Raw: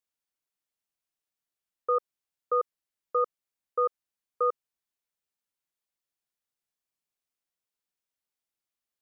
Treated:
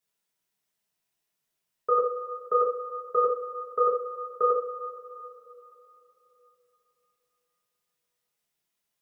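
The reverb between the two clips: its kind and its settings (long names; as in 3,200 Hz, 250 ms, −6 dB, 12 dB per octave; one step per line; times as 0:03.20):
coupled-rooms reverb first 0.38 s, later 3.5 s, from −20 dB, DRR −6.5 dB
level +1 dB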